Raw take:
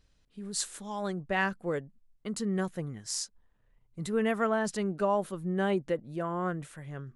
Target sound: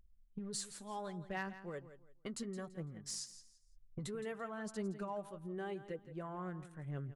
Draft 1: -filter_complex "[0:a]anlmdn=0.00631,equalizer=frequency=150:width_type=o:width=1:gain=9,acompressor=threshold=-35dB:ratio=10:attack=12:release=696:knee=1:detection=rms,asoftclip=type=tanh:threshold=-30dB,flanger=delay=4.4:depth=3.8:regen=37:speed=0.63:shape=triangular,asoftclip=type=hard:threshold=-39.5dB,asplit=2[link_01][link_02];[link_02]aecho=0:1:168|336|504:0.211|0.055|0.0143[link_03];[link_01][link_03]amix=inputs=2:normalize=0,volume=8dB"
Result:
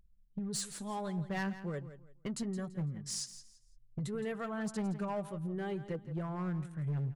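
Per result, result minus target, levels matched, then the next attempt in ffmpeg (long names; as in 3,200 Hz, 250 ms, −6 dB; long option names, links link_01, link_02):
downward compressor: peak gain reduction −5 dB; 125 Hz band +3.5 dB
-filter_complex "[0:a]anlmdn=0.00631,equalizer=frequency=150:width_type=o:width=1:gain=9,acompressor=threshold=-42dB:ratio=10:attack=12:release=696:knee=1:detection=rms,asoftclip=type=tanh:threshold=-30dB,flanger=delay=4.4:depth=3.8:regen=37:speed=0.63:shape=triangular,asoftclip=type=hard:threshold=-39.5dB,asplit=2[link_01][link_02];[link_02]aecho=0:1:168|336|504:0.211|0.055|0.0143[link_03];[link_01][link_03]amix=inputs=2:normalize=0,volume=8dB"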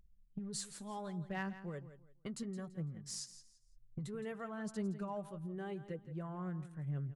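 125 Hz band +3.5 dB
-filter_complex "[0:a]anlmdn=0.00631,acompressor=threshold=-42dB:ratio=10:attack=12:release=696:knee=1:detection=rms,asoftclip=type=tanh:threshold=-30dB,flanger=delay=4.4:depth=3.8:regen=37:speed=0.63:shape=triangular,asoftclip=type=hard:threshold=-39.5dB,asplit=2[link_01][link_02];[link_02]aecho=0:1:168|336|504:0.211|0.055|0.0143[link_03];[link_01][link_03]amix=inputs=2:normalize=0,volume=8dB"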